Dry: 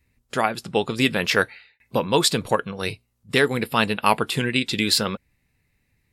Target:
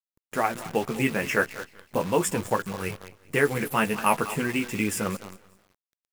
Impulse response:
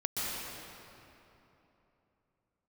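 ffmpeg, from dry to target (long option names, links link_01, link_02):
-filter_complex "[0:a]asettb=1/sr,asplit=3[link_01][link_02][link_03];[link_01]atrim=end=3.434[link_04];[link_02]atrim=start=3.43:end=4.24,asetpts=PTS-STARTPTS,afade=type=in:duration=0.004:curve=qsin,afade=type=out:start_time=0.806:duration=0.004:curve=qsin,highshelf=frequency=4600:gain=8[link_05];[link_03]atrim=start=4.236[link_06];[link_04][link_05]acrossfade=duration=0.004:curve1=hsin:curve2=qsin[link_07];[link_07][link_06]acrossfade=duration=0.004:curve1=qsin:curve2=hsin,asplit=2[link_08][link_09];[link_09]aecho=0:1:193|386|579:0.126|0.0491|0.0191[link_10];[link_08][link_10]amix=inputs=2:normalize=0,flanger=delay=9.8:depth=4.9:regen=-24:speed=0.41:shape=triangular,asuperstop=centerf=4100:order=4:qfactor=1.1,asplit=2[link_11][link_12];[link_12]adelay=214,lowpass=frequency=4100:poles=1,volume=-16dB,asplit=2[link_13][link_14];[link_14]adelay=214,lowpass=frequency=4100:poles=1,volume=0.18[link_15];[link_13][link_15]amix=inputs=2:normalize=0[link_16];[link_11][link_16]amix=inputs=2:normalize=0,acrusher=bits=7:dc=4:mix=0:aa=0.000001"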